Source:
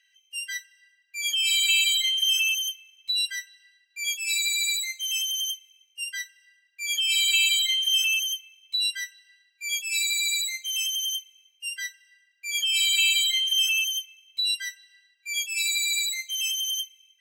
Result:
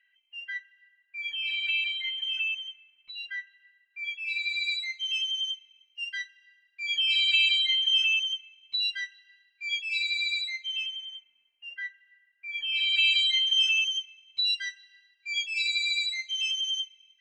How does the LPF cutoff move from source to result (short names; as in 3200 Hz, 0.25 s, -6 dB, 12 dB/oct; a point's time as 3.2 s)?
LPF 24 dB/oct
4.1 s 2500 Hz
4.75 s 4000 Hz
10.54 s 4000 Hz
11.07 s 2300 Hz
12.51 s 2300 Hz
13.28 s 4800 Hz